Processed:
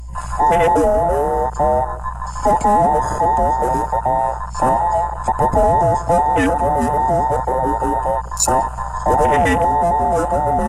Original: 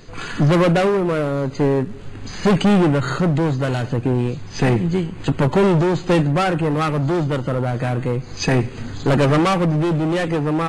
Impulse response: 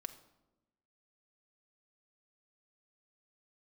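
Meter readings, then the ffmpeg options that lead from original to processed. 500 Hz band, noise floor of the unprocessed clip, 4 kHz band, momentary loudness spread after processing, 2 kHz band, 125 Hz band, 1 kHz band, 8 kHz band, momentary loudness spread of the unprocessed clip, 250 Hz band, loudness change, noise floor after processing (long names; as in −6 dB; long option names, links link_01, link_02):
+2.5 dB, −33 dBFS, can't be measured, 6 LU, −0.5 dB, −6.5 dB, +11.5 dB, +10.5 dB, 7 LU, −6.0 dB, +2.0 dB, −28 dBFS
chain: -filter_complex "[0:a]afftfilt=real='real(if(between(b,1,1008),(2*floor((b-1)/48)+1)*48-b,b),0)':imag='imag(if(between(b,1,1008),(2*floor((b-1)/48)+1)*48-b,b),0)*if(between(b,1,1008),-1,1)':win_size=2048:overlap=0.75,aeval=exprs='val(0)+0.01*(sin(2*PI*60*n/s)+sin(2*PI*2*60*n/s)/2+sin(2*PI*3*60*n/s)/3+sin(2*PI*4*60*n/s)/4+sin(2*PI*5*60*n/s)/5)':channel_layout=same,equalizer=frequency=62:width=0.31:gain=10,aexciter=amount=9.8:drive=8:freq=6100,asplit=2[link_01][link_02];[link_02]aecho=0:1:185|370:0.133|0.024[link_03];[link_01][link_03]amix=inputs=2:normalize=0,afwtdn=0.1,asplit=2[link_04][link_05];[link_05]alimiter=limit=-12dB:level=0:latency=1:release=18,volume=1.5dB[link_06];[link_04][link_06]amix=inputs=2:normalize=0,volume=-4.5dB"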